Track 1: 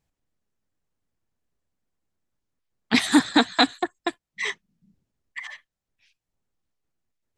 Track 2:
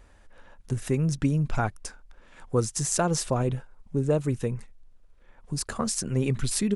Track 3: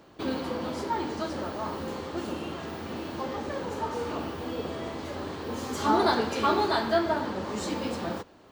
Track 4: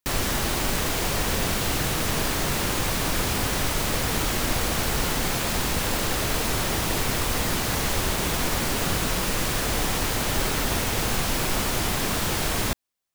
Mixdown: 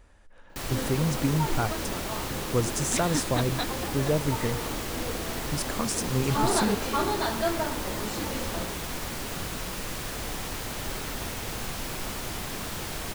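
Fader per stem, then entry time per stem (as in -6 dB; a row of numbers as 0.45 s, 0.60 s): -14.0 dB, -1.5 dB, -3.0 dB, -9.0 dB; 0.00 s, 0.00 s, 0.50 s, 0.50 s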